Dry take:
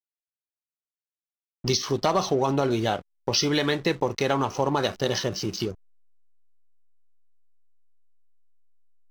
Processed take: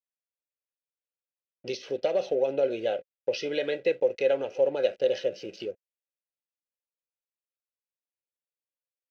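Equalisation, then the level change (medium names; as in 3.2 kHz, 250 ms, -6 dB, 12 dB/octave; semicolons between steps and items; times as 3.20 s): vowel filter e; Butterworth band-stop 1.8 kHz, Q 6.6; +7.0 dB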